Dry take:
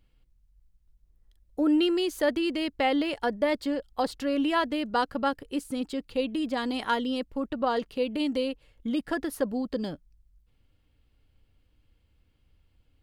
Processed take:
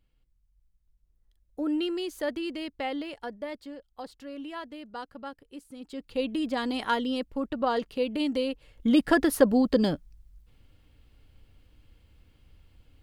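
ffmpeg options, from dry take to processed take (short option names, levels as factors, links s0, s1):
-af "volume=5.96,afade=t=out:st=2.49:d=1.22:silence=0.421697,afade=t=in:st=5.79:d=0.48:silence=0.223872,afade=t=in:st=8.47:d=0.52:silence=0.398107"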